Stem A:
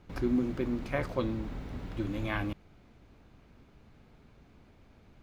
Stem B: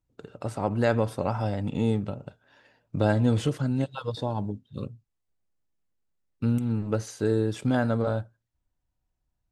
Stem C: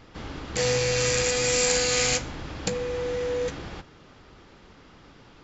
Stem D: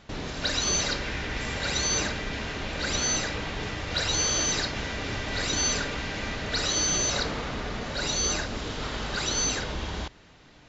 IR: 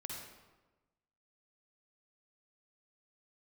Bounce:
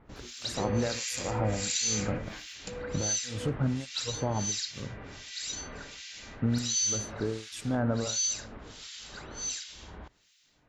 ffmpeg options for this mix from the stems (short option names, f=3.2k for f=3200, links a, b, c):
-filter_complex "[0:a]flanger=delay=17:depth=5.7:speed=0.22,volume=-3.5dB[a];[1:a]alimiter=limit=-18.5dB:level=0:latency=1:release=99,volume=-0.5dB,asplit=2[b][c];[c]volume=-10.5dB[d];[2:a]volume=-9dB[e];[3:a]aemphasis=mode=production:type=75kf,volume=-11.5dB[f];[4:a]atrim=start_sample=2205[g];[d][g]afir=irnorm=-1:irlink=0[h];[a][b][e][f][h]amix=inputs=5:normalize=0,highshelf=f=8.1k:g=6.5,acrossover=split=1900[i][j];[i]aeval=exprs='val(0)*(1-1/2+1/2*cos(2*PI*1.4*n/s))':c=same[k];[j]aeval=exprs='val(0)*(1-1/2-1/2*cos(2*PI*1.4*n/s))':c=same[l];[k][l]amix=inputs=2:normalize=0"